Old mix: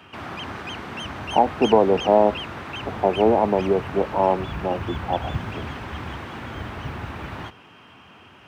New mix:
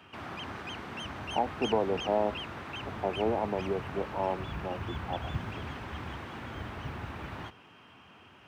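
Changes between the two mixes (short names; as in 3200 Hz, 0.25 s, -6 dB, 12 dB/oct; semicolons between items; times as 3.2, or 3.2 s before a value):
speech -12.0 dB; background -7.0 dB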